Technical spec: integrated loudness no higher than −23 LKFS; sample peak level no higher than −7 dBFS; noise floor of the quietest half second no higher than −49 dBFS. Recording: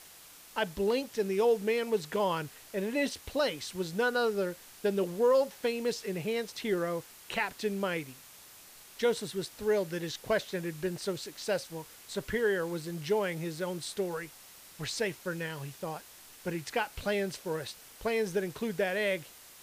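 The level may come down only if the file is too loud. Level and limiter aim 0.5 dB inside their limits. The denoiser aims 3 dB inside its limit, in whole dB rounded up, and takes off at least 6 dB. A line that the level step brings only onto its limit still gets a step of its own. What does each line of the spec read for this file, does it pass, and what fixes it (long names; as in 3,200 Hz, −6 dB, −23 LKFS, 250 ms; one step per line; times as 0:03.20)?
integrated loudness −32.5 LKFS: in spec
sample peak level −17.5 dBFS: in spec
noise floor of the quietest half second −53 dBFS: in spec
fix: no processing needed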